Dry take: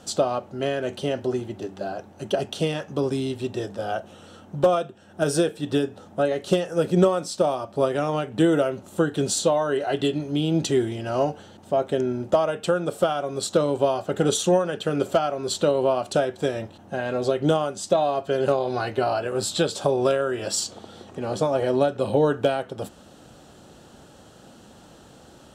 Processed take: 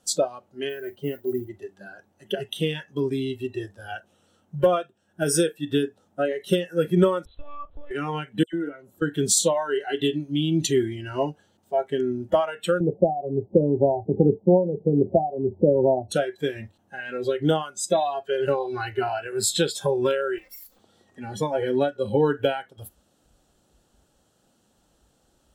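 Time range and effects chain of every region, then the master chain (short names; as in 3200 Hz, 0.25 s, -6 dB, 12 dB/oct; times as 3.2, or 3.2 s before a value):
0.69–1.49 high shelf 2600 Hz -12 dB + notch 1700 Hz, Q 13 + modulation noise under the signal 30 dB
7.25–7.91 compressor 10:1, threshold -24 dBFS + monotone LPC vocoder at 8 kHz 290 Hz
8.43–9.02 high shelf 2800 Hz -9.5 dB + compressor 2:1, threshold -27 dBFS + dispersion lows, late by 0.104 s, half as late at 2800 Hz
12.8–16.11 steep low-pass 900 Hz 72 dB/oct + low shelf 360 Hz +6.5 dB + three-band squash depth 40%
20.38–20.79 minimum comb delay 3.8 ms + HPF 40 Hz 6 dB/oct + compressor 12:1, threshold -39 dBFS
whole clip: spectral noise reduction 18 dB; high shelf 6900 Hz +11 dB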